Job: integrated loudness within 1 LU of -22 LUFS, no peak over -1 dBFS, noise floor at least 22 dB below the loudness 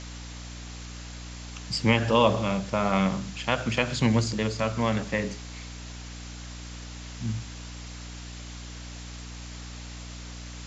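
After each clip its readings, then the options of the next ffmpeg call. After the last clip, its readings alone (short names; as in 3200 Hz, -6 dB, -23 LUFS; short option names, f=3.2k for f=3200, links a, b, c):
hum 60 Hz; harmonics up to 300 Hz; hum level -38 dBFS; noise floor -40 dBFS; noise floor target -48 dBFS; loudness -26.0 LUFS; peak -8.0 dBFS; loudness target -22.0 LUFS
-> -af "bandreject=f=60:t=h:w=4,bandreject=f=120:t=h:w=4,bandreject=f=180:t=h:w=4,bandreject=f=240:t=h:w=4,bandreject=f=300:t=h:w=4"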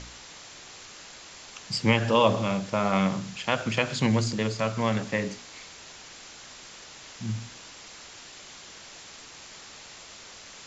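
hum none; noise floor -47 dBFS; noise floor target -49 dBFS
-> -af "afftdn=nr=6:nf=-47"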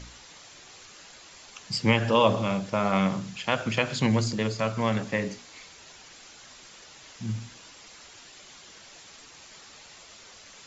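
noise floor -50 dBFS; loudness -26.5 LUFS; peak -8.0 dBFS; loudness target -22.0 LUFS
-> -af "volume=4.5dB"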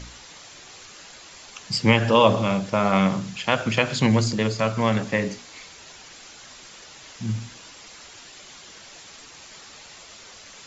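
loudness -22.0 LUFS; peak -3.5 dBFS; noise floor -45 dBFS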